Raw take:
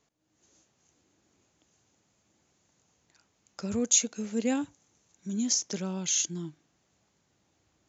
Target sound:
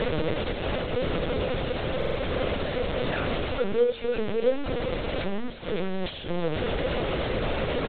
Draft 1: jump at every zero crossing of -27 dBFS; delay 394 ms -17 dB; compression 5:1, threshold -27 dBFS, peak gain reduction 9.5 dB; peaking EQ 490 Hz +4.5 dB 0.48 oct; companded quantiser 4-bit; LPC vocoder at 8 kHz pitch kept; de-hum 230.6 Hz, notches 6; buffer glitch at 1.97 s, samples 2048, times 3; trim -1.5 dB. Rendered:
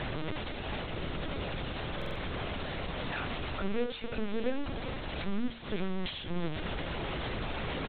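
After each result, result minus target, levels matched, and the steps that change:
500 Hz band -4.0 dB; jump at every zero crossing: distortion -4 dB
change: peaking EQ 490 Hz +15.5 dB 0.48 oct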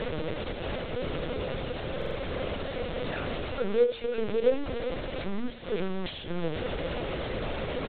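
jump at every zero crossing: distortion -4 dB
change: jump at every zero crossing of -19.5 dBFS

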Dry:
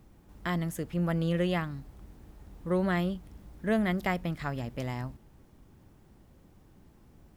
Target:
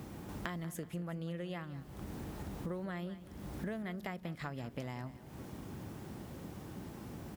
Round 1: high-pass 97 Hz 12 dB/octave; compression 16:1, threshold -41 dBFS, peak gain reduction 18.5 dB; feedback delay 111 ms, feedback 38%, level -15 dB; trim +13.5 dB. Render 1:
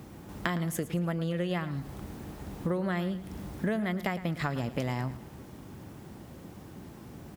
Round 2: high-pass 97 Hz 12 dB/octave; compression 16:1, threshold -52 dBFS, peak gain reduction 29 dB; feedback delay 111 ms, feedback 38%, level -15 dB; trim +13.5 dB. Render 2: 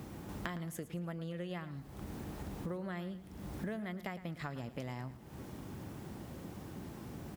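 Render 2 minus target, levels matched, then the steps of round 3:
echo 77 ms early
high-pass 97 Hz 12 dB/octave; compression 16:1, threshold -52 dBFS, peak gain reduction 29 dB; feedback delay 188 ms, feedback 38%, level -15 dB; trim +13.5 dB

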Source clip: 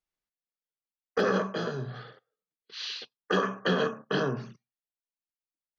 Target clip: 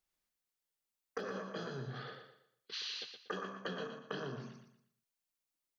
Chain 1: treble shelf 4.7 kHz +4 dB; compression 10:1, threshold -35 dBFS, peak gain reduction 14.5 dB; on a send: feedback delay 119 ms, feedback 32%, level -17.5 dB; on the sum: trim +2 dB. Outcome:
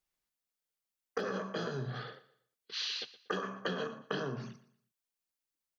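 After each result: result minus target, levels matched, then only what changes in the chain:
echo-to-direct -10 dB; compression: peak gain reduction -6 dB
change: feedback delay 119 ms, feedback 32%, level -7.5 dB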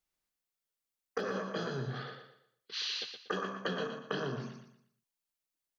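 compression: peak gain reduction -6 dB
change: compression 10:1, threshold -41.5 dBFS, peak gain reduction 20 dB

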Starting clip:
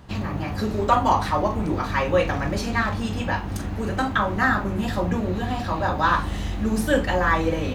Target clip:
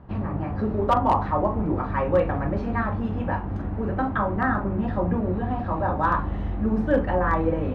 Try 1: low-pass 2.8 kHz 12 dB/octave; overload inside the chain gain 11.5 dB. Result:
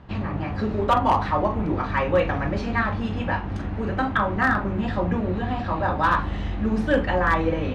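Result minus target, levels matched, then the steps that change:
2 kHz band +5.0 dB
change: low-pass 1.2 kHz 12 dB/octave

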